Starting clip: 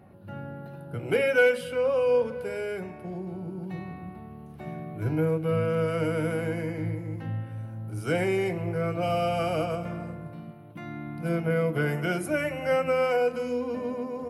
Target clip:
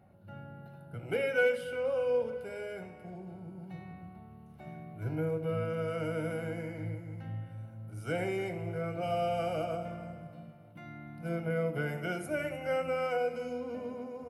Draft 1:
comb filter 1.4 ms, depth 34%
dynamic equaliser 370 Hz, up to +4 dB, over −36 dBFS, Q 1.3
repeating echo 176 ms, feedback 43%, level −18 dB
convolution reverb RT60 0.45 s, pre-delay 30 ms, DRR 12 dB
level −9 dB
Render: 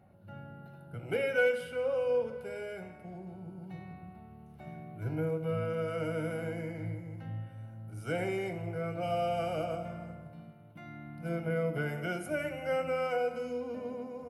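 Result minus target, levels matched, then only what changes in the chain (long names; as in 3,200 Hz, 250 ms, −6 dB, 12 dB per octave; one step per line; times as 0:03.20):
echo 126 ms early
change: repeating echo 302 ms, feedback 43%, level −18 dB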